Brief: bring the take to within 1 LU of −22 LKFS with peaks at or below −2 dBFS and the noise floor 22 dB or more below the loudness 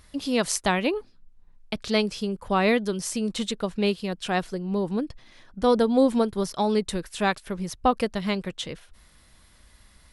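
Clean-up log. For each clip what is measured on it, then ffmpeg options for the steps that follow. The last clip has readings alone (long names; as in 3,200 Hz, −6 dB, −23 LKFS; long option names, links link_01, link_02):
integrated loudness −26.0 LKFS; sample peak −7.0 dBFS; target loudness −22.0 LKFS
→ -af "volume=4dB"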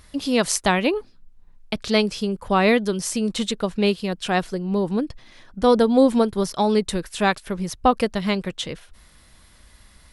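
integrated loudness −22.0 LKFS; sample peak −3.0 dBFS; background noise floor −52 dBFS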